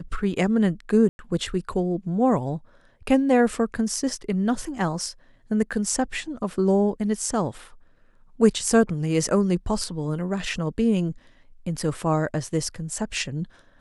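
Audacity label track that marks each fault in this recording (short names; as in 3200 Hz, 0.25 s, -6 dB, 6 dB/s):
1.090000	1.190000	gap 0.101 s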